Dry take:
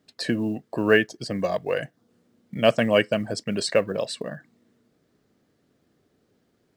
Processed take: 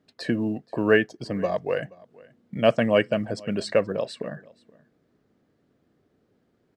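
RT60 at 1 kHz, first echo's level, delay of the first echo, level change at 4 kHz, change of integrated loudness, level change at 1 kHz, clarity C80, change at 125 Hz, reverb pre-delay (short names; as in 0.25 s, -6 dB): none, -24.0 dB, 0.477 s, -5.0 dB, -1.0 dB, -0.5 dB, none, 0.0 dB, none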